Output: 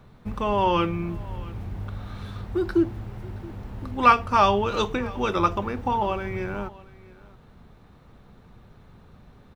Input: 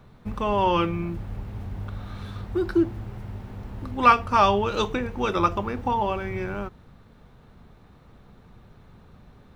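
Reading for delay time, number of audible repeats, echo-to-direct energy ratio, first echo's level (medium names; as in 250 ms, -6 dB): 673 ms, 1, -21.5 dB, -21.5 dB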